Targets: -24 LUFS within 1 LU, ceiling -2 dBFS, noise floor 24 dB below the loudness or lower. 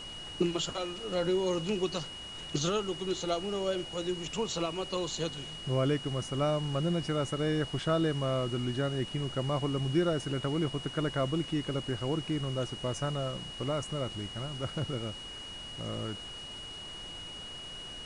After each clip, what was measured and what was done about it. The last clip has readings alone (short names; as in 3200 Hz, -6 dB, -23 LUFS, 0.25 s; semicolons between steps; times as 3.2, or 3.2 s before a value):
steady tone 2900 Hz; tone level -42 dBFS; noise floor -44 dBFS; noise floor target -57 dBFS; loudness -33.0 LUFS; peak -15.5 dBFS; loudness target -24.0 LUFS
-> notch 2900 Hz, Q 30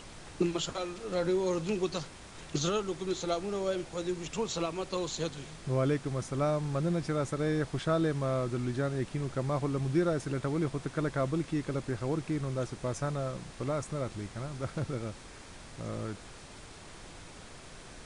steady tone none; noise floor -49 dBFS; noise floor target -57 dBFS
-> noise print and reduce 8 dB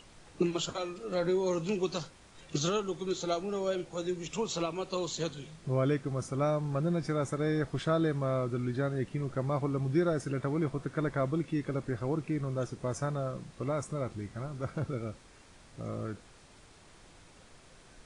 noise floor -57 dBFS; loudness -33.0 LUFS; peak -16.0 dBFS; loudness target -24.0 LUFS
-> gain +9 dB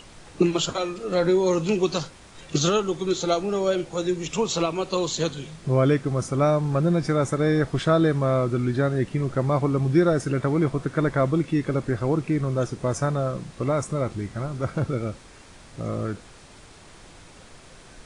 loudness -24.0 LUFS; peak -7.0 dBFS; noise floor -48 dBFS